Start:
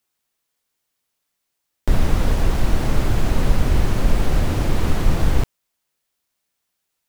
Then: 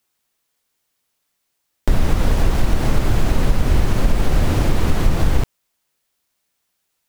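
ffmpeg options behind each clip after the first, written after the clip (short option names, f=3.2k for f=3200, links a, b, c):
-af "acompressor=threshold=-14dB:ratio=3,volume=4dB"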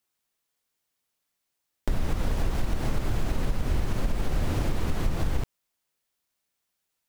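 -af "acompressor=threshold=-14dB:ratio=2,volume=-8dB"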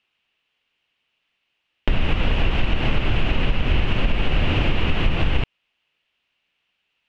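-af "lowpass=f=2.8k:t=q:w=5.3,volume=6.5dB"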